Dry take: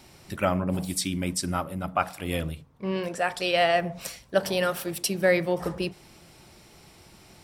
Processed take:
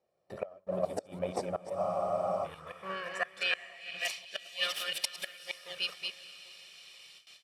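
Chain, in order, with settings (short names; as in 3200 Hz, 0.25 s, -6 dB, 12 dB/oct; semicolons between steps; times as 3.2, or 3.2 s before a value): reverse delay 0.17 s, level -4 dB; flipped gate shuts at -13 dBFS, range -28 dB; comb 1.7 ms, depth 71%; diffused feedback echo 0.456 s, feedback 51%, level -16 dB; gate with hold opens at -37 dBFS; high shelf 3900 Hz +11 dB; in parallel at -9 dB: decimation with a swept rate 35×, swing 60% 2.1 Hz; on the sum: band-pass sweep 590 Hz -> 3000 Hz, 1.57–4.26; spectral freeze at 1.79, 0.65 s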